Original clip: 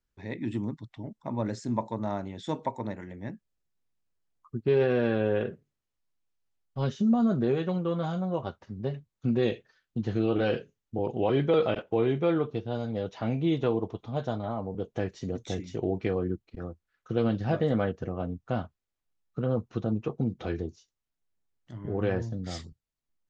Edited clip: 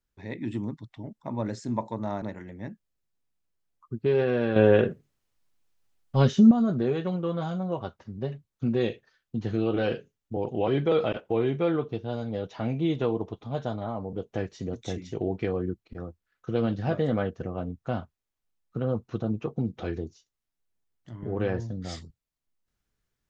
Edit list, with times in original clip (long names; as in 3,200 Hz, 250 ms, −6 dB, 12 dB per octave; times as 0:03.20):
0:02.22–0:02.84: remove
0:05.18–0:07.13: clip gain +8.5 dB